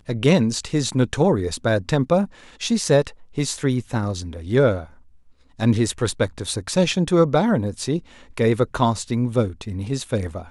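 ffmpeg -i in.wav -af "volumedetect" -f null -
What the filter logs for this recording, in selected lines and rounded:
mean_volume: -21.3 dB
max_volume: -5.0 dB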